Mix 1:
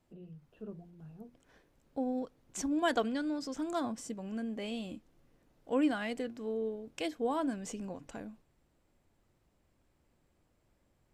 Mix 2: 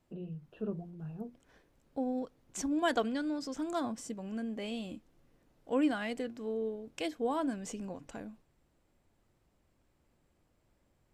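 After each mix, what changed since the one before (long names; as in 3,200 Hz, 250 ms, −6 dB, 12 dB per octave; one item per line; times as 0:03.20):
first voice +8.0 dB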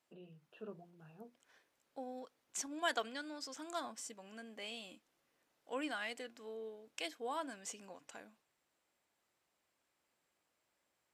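second voice: add low-shelf EQ 490 Hz −3 dB
master: add high-pass filter 1,200 Hz 6 dB per octave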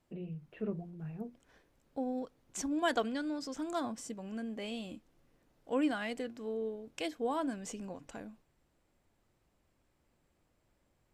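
first voice: remove Butterworth band-reject 2,100 Hz, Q 1.9
master: remove high-pass filter 1,200 Hz 6 dB per octave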